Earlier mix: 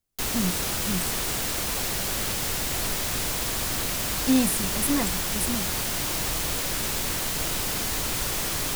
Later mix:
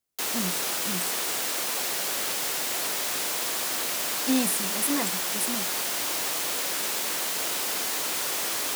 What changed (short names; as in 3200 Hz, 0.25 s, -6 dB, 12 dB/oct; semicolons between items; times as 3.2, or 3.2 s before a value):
speech: add HPF 310 Hz 6 dB/oct; background: add HPF 370 Hz 12 dB/oct